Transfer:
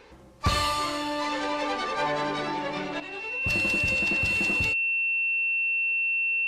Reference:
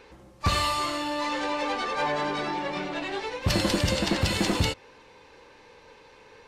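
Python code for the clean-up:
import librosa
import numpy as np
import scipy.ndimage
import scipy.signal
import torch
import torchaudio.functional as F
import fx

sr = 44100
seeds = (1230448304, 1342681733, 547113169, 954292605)

y = fx.notch(x, sr, hz=2700.0, q=30.0)
y = fx.gain(y, sr, db=fx.steps((0.0, 0.0), (3.0, 8.0)))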